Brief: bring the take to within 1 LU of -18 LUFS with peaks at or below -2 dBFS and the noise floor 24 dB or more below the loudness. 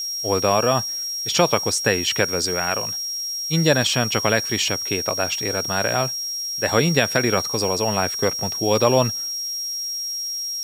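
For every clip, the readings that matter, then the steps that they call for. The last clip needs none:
steady tone 5600 Hz; tone level -25 dBFS; noise floor -28 dBFS; noise floor target -45 dBFS; loudness -20.5 LUFS; peak -2.5 dBFS; loudness target -18.0 LUFS
-> notch 5600 Hz, Q 30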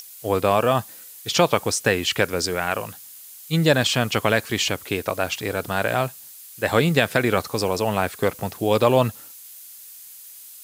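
steady tone none; noise floor -43 dBFS; noise floor target -46 dBFS
-> noise print and reduce 6 dB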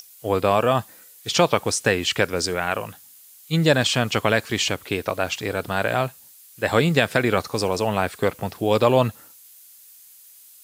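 noise floor -49 dBFS; loudness -22.0 LUFS; peak -3.0 dBFS; loudness target -18.0 LUFS
-> gain +4 dB; limiter -2 dBFS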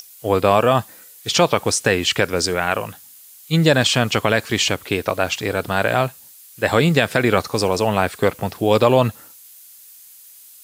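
loudness -18.5 LUFS; peak -2.0 dBFS; noise floor -45 dBFS

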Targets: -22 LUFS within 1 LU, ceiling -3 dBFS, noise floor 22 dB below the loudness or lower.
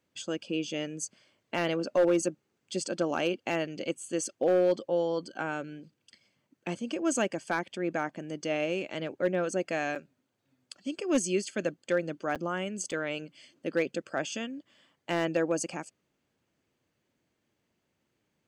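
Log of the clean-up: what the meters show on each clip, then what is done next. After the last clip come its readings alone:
clipped 0.3%; flat tops at -18.0 dBFS; dropouts 3; longest dropout 6.9 ms; loudness -31.5 LUFS; peak -18.0 dBFS; loudness target -22.0 LUFS
-> clip repair -18 dBFS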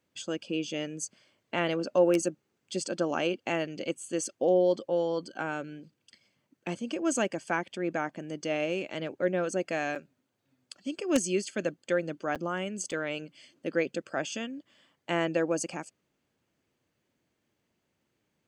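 clipped 0.0%; dropouts 3; longest dropout 6.9 ms
-> interpolate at 9.95/12.35/12.91, 6.9 ms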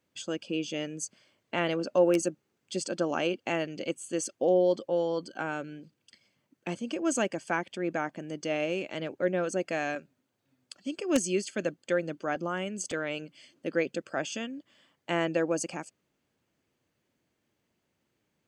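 dropouts 0; loudness -31.0 LUFS; peak -9.0 dBFS; loudness target -22.0 LUFS
-> gain +9 dB; limiter -3 dBFS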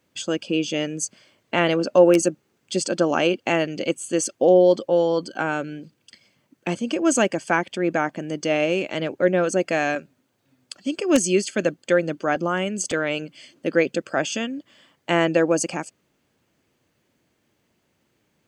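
loudness -22.5 LUFS; peak -3.0 dBFS; noise floor -70 dBFS

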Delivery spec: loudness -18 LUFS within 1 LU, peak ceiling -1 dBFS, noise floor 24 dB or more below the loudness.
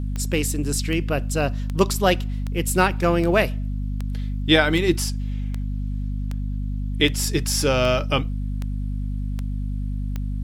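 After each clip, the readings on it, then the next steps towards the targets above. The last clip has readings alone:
clicks 14; hum 50 Hz; harmonics up to 250 Hz; hum level -23 dBFS; loudness -23.5 LUFS; peak -3.0 dBFS; loudness target -18.0 LUFS
-> de-click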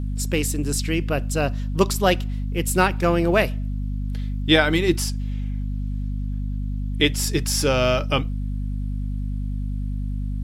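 clicks 0; hum 50 Hz; harmonics up to 250 Hz; hum level -23 dBFS
-> notches 50/100/150/200/250 Hz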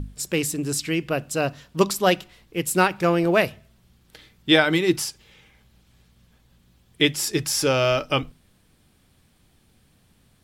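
hum none; loudness -22.5 LUFS; peak -3.0 dBFS; loudness target -18.0 LUFS
-> gain +4.5 dB; limiter -1 dBFS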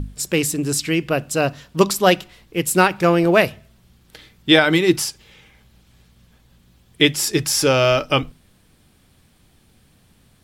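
loudness -18.0 LUFS; peak -1.0 dBFS; noise floor -56 dBFS

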